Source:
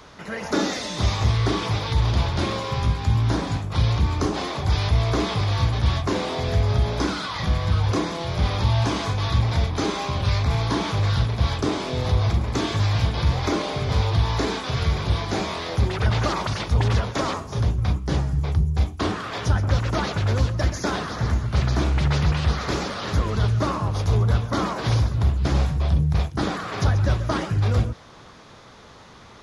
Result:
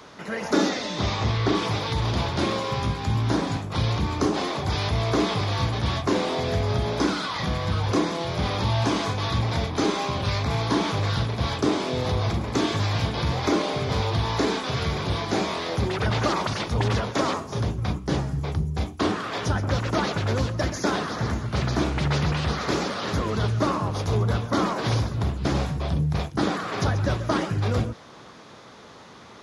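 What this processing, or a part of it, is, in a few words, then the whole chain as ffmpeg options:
filter by subtraction: -filter_complex "[0:a]asettb=1/sr,asplit=3[s0][s1][s2];[s0]atrim=end=0.694[s3];[s1]atrim=start=0.69:end=1.55,asetpts=PTS-STARTPTS,afade=t=in:d=0.004:c=qsin,afade=t=out:st=0.856:d=0.004:c=qsin,lowpass=5400[s4];[s2]atrim=start=1.546[s5];[s3][s4]acrossfade=d=0.004:c1=hsin:c2=qsin[s6];[s6][s5]acrossfade=d=0.004:c1=qsin:c2=hsin,asplit=2[s7][s8];[s8]lowpass=250,volume=-1[s9];[s7][s9]amix=inputs=2:normalize=0"

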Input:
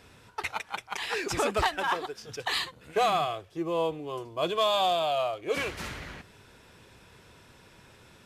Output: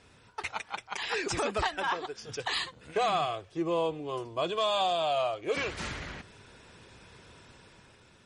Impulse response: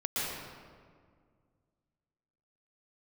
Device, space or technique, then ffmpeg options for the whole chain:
low-bitrate web radio: -af "dynaudnorm=f=140:g=9:m=1.78,alimiter=limit=0.158:level=0:latency=1:release=404,volume=0.668" -ar 48000 -c:a libmp3lame -b:a 40k

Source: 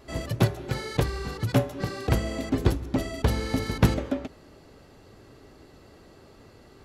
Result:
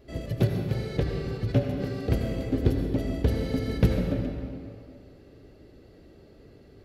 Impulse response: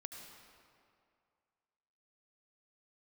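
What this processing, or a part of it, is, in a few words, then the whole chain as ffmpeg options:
stairwell: -filter_complex "[0:a]equalizer=f=500:t=o:w=1:g=5,equalizer=f=1000:t=o:w=1:g=-10,equalizer=f=8000:t=o:w=1:g=-8,asettb=1/sr,asplit=3[s0][s1][s2];[s0]atrim=end=0.894[s3];[s1]atrim=start=0.89:end=1.61,asetpts=PTS-STARTPTS,afade=t=in:d=0.004:c=qsin,afade=t=out:st=0.716:d=0.004:c=qsin,acrossover=split=6500[s4][s5];[s5]acompressor=threshold=0.00141:ratio=4:attack=1:release=60[s6];[s4][s6]amix=inputs=2:normalize=0[s7];[s2]atrim=start=1.606[s8];[s3][s7]acrossfade=d=0.004:c1=hsin:c2=qsin[s9];[s9][s8]acrossfade=d=0.004:c1=qsin:c2=hsin[s10];[1:a]atrim=start_sample=2205[s11];[s10][s11]afir=irnorm=-1:irlink=0,lowshelf=f=300:g=5"

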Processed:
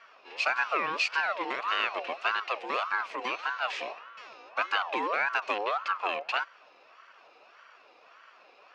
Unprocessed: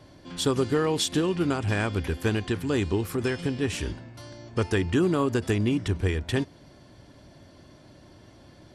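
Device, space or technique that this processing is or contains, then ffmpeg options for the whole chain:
voice changer toy: -af "aeval=exprs='val(0)*sin(2*PI*940*n/s+940*0.35/1.7*sin(2*PI*1.7*n/s))':c=same,highpass=550,equalizer=f=870:t=q:w=4:g=-8,equalizer=f=2600:t=q:w=4:g=10,equalizer=f=3700:t=q:w=4:g=-4,lowpass=f=4900:w=0.5412,lowpass=f=4900:w=1.3066"

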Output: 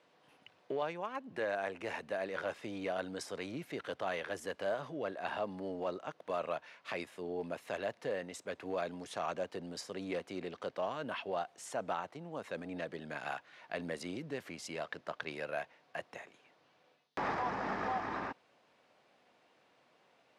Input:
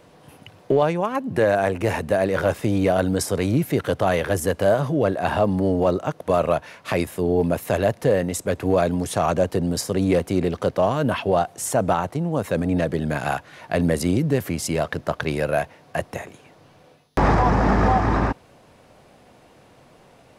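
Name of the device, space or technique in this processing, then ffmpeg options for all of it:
phone in a pocket: -af "lowpass=3700,aderivative,equalizer=f=230:t=o:w=2.2:g=5,highshelf=f=2400:g=-10,volume=1.41"

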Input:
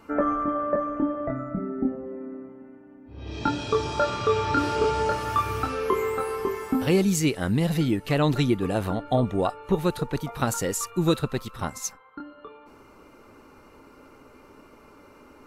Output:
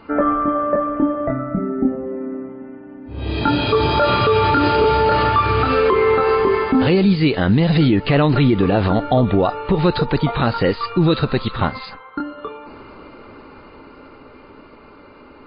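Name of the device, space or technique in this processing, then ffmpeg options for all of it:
low-bitrate web radio: -filter_complex "[0:a]asettb=1/sr,asplit=3[s0][s1][s2];[s0]atrim=end=7.964[s3];[s1]atrim=start=7.96:end=8.79,asetpts=PTS-STARTPTS,afade=t=in:d=0.004:c=qsin,afade=t=out:st=0.826:d=0.004:c=qsin,acrossover=split=3300[s4][s5];[s5]acompressor=threshold=0.00631:ratio=4:attack=1:release=60[s6];[s4][s6]amix=inputs=2:normalize=0[s7];[s2]atrim=start=8.786[s8];[s3][s7]acrossfade=d=0.004:c1=hsin:c2=qsin[s9];[s9][s8]acrossfade=d=0.004:c1=qsin:c2=hsin,dynaudnorm=f=280:g=21:m=2.66,alimiter=limit=0.188:level=0:latency=1:release=76,volume=2.51" -ar 11025 -c:a libmp3lame -b:a 24k

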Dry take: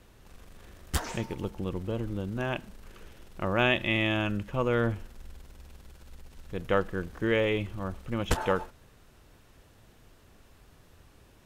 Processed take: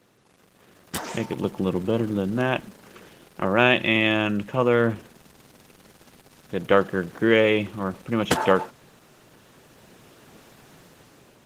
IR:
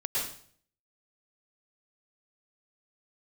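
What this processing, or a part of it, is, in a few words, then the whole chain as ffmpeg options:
video call: -af "highpass=f=130:w=0.5412,highpass=f=130:w=1.3066,dynaudnorm=f=520:g=5:m=4.73" -ar 48000 -c:a libopus -b:a 16k

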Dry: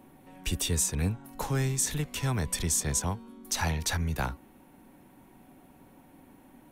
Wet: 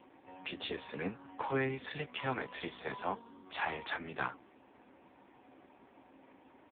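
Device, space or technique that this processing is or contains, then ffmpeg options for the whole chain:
telephone: -filter_complex "[0:a]highpass=360,lowpass=3200,highshelf=f=2900:g=5,asplit=2[s0][s1];[s1]adelay=15,volume=0.398[s2];[s0][s2]amix=inputs=2:normalize=0,asoftclip=type=tanh:threshold=0.0891,volume=1.19" -ar 8000 -c:a libopencore_amrnb -b:a 5150

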